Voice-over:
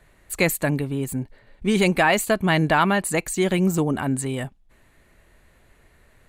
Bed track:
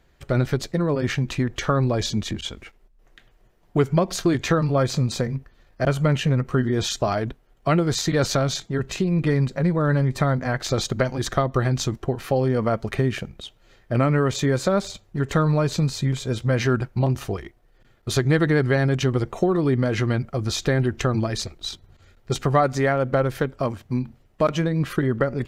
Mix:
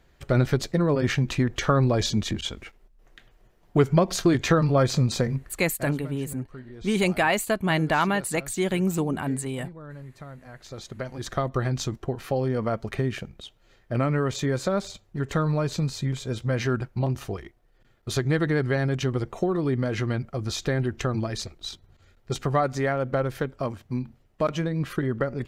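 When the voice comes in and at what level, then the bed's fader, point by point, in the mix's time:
5.20 s, -4.0 dB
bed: 5.52 s 0 dB
6.08 s -21 dB
10.47 s -21 dB
11.44 s -4.5 dB

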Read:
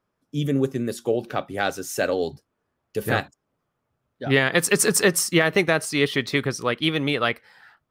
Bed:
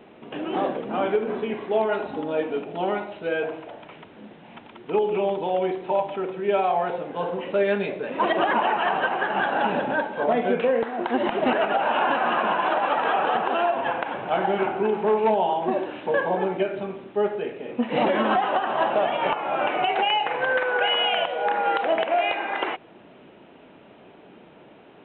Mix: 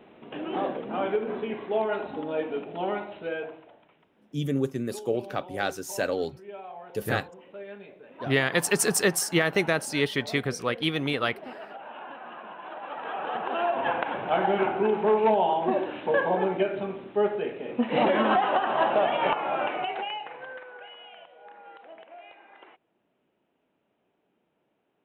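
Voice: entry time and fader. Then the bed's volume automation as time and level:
4.00 s, -4.5 dB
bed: 3.21 s -4 dB
3.98 s -19.5 dB
12.55 s -19.5 dB
13.87 s -1 dB
19.43 s -1 dB
20.97 s -25 dB

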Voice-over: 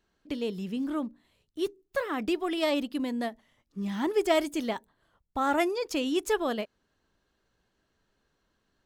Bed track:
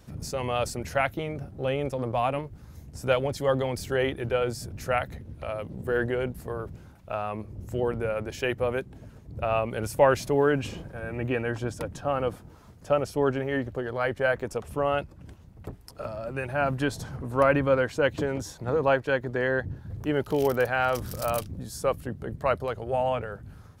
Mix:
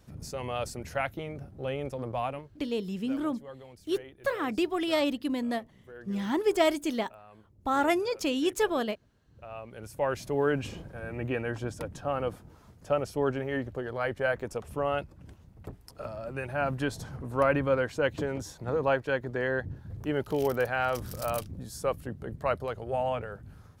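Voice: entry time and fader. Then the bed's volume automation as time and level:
2.30 s, +0.5 dB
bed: 2.23 s -5.5 dB
2.80 s -21 dB
9.21 s -21 dB
10.49 s -3.5 dB

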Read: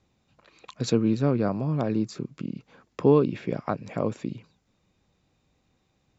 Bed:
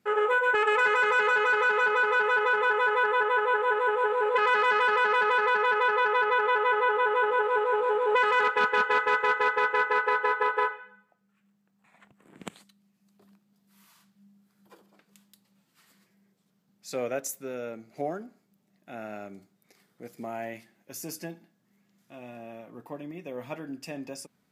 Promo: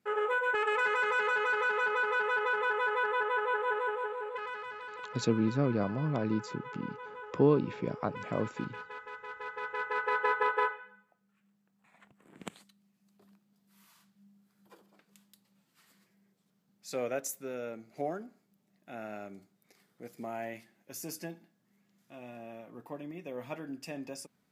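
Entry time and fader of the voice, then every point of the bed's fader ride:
4.35 s, -5.5 dB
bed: 3.78 s -6 dB
4.78 s -20.5 dB
9.22 s -20.5 dB
10.24 s -3 dB

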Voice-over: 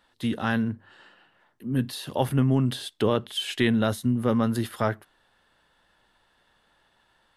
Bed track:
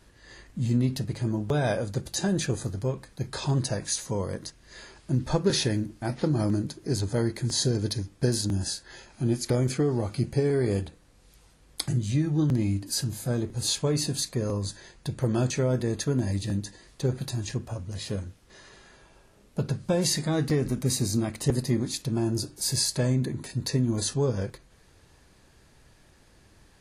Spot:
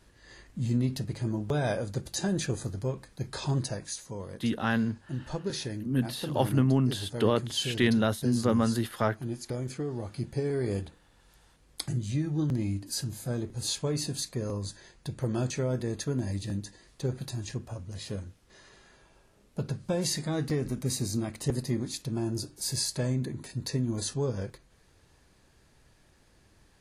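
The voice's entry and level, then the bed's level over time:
4.20 s, -2.0 dB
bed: 3.57 s -3 dB
4.00 s -9.5 dB
9.73 s -9.5 dB
10.69 s -4.5 dB

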